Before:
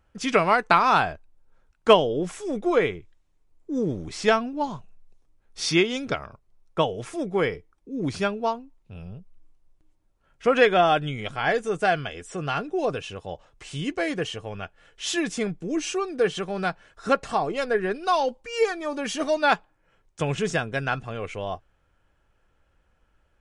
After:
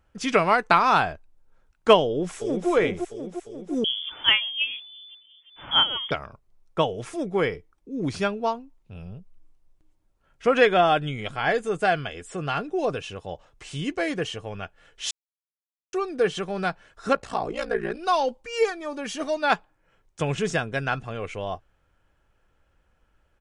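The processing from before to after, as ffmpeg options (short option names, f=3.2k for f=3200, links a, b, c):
-filter_complex "[0:a]asplit=2[a][b];[b]afade=t=in:st=2.06:d=0.01,afade=t=out:st=2.69:d=0.01,aecho=0:1:350|700|1050|1400|1750|2100|2450|2800|3150|3500:0.562341|0.365522|0.237589|0.154433|0.100381|0.0652479|0.0424112|0.0275673|0.0179187|0.0116472[c];[a][c]amix=inputs=2:normalize=0,asettb=1/sr,asplit=3[d][e][f];[d]atrim=end=3.844[g];[e]atrim=start=3.84:end=6.11,asetpts=PTS-STARTPTS,afade=t=in:d=0.004:c=qsin,afade=t=out:st=2.266:d=0.004:c=qsin,lowpass=f=3k:t=q:w=0.5098,lowpass=f=3k:t=q:w=0.6013,lowpass=f=3k:t=q:w=0.9,lowpass=f=3k:t=q:w=2.563,afreqshift=-3500[h];[f]atrim=start=6.106[i];[g][h]acrossfade=d=0.004:c1=hsin:c2=qsin[j];[j][i]acrossfade=d=0.004:c1=qsin:c2=hsin,asettb=1/sr,asplit=3[k][l][m];[k]atrim=end=10.624[n];[l]atrim=start=10.62:end=12.65,asetpts=PTS-STARTPTS,afade=t=in:d=0.004:c=qsin,afade=t=out:st=2.026:d=0.004:c=qsin,bandreject=f=5.8k:w=10[o];[m]atrim=start=12.646[p];[n][o]acrossfade=d=0.004:c1=hsin:c2=qsin[q];[q][p]acrossfade=d=0.004:c1=qsin:c2=hsin,asplit=3[r][s][t];[r]afade=t=out:st=17.13:d=0.02[u];[s]aeval=exprs='val(0)*sin(2*PI*29*n/s)':c=same,afade=t=in:st=17.13:d=0.02,afade=t=out:st=17.97:d=0.02[v];[t]afade=t=in:st=17.97:d=0.02[w];[u][v][w]amix=inputs=3:normalize=0,asplit=5[x][y][z][aa][ab];[x]atrim=end=15.11,asetpts=PTS-STARTPTS,afade=t=out:st=15.106:d=0.004:c=hsin[ac];[y]atrim=start=15.11:end=15.93,asetpts=PTS-STARTPTS,volume=0[ad];[z]atrim=start=15.93:end=18.702,asetpts=PTS-STARTPTS,afade=t=in:d=0.004:c=hsin[ae];[aa]atrim=start=18.698:end=19.502,asetpts=PTS-STARTPTS,volume=-3dB[af];[ab]atrim=start=19.498[ag];[ac][ad][ae]concat=n=3:v=0:a=1[ah];[ah][af]acrossfade=d=0.004:c1=hsin:c2=hsin[ai];[ai][ag]acrossfade=d=0.004:c1=hsin:c2=hsin"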